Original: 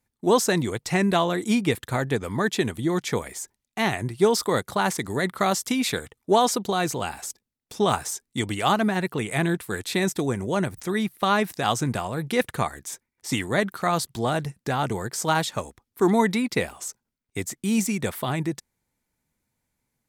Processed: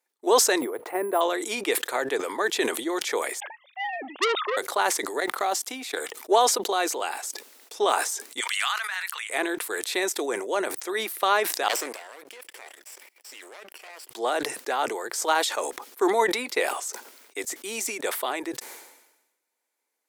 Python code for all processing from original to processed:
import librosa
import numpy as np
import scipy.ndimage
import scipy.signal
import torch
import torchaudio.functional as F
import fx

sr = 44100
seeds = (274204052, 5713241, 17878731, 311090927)

y = fx.chain(x, sr, fx.lowpass(hz=1100.0, slope=12),
    fx.resample_bad(factor=4, down='filtered', up='hold'), at=(0.61, 1.21))
y = fx.chain(y, sr, fx.sine_speech(),
    fx.transformer_sat(knee_hz=3400.0), at=(3.4, 4.57))
y = fx.chain(y, sr, fx.law_mismatch(coded='A'),
    fx.small_body(hz=(270.0, 750.0), ring_ms=40, db=7),
    fx.level_steps(step_db=12), at=(5.2, 5.97))
y = fx.chain(y, sr, fx.highpass(hz=1300.0, slope=24),
    fx.high_shelf(hz=9500.0, db=-6.0),
    fx.pre_swell(db_per_s=21.0), at=(8.4, 9.3))
y = fx.chain(y, sr, fx.lower_of_two(delay_ms=0.38),
    fx.highpass(hz=690.0, slope=6),
    fx.level_steps(step_db=22), at=(11.68, 14.09))
y = scipy.signal.sosfilt(scipy.signal.cheby2(4, 40, 180.0, 'highpass', fs=sr, output='sos'), y)
y = fx.sustainer(y, sr, db_per_s=58.0)